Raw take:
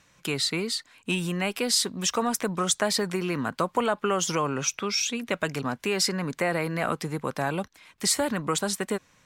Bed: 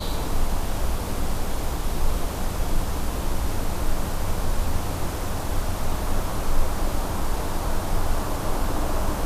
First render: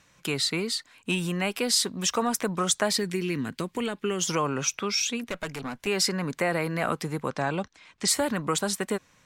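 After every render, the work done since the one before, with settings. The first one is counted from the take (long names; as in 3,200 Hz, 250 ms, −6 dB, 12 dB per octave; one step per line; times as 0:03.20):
0:02.97–0:04.21: flat-topped bell 870 Hz −11.5 dB
0:05.24–0:05.87: tube saturation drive 25 dB, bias 0.65
0:07.28–0:08.08: low-pass filter 7,700 Hz 24 dB per octave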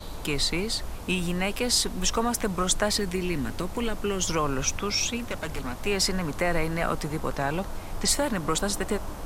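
mix in bed −11 dB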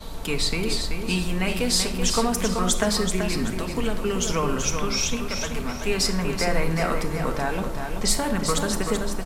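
repeating echo 382 ms, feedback 32%, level −6.5 dB
rectangular room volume 2,000 cubic metres, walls furnished, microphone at 1.6 metres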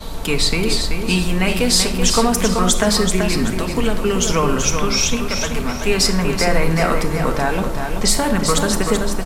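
level +7 dB
brickwall limiter −3 dBFS, peak gain reduction 2.5 dB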